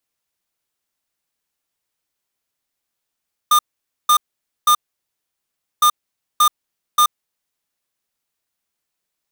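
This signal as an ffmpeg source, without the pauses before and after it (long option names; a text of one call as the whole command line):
ffmpeg -f lavfi -i "aevalsrc='0.251*(2*lt(mod(1210*t,1),0.5)-1)*clip(min(mod(mod(t,2.31),0.58),0.08-mod(mod(t,2.31),0.58))/0.005,0,1)*lt(mod(t,2.31),1.74)':duration=4.62:sample_rate=44100" out.wav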